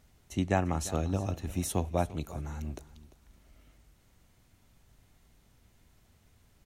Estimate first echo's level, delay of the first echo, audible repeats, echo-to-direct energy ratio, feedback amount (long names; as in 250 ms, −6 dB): −17.5 dB, 346 ms, 2, −17.5 dB, 23%